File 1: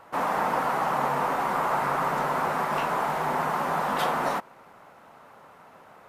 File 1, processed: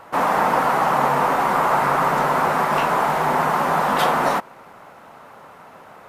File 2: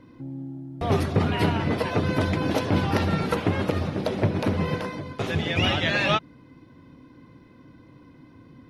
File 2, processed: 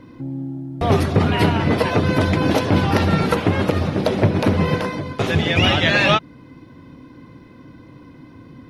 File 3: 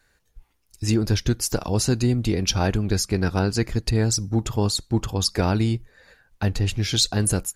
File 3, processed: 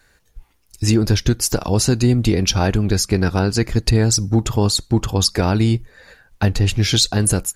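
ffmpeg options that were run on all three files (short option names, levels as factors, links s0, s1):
-af "alimiter=limit=0.251:level=0:latency=1:release=295,volume=2.37"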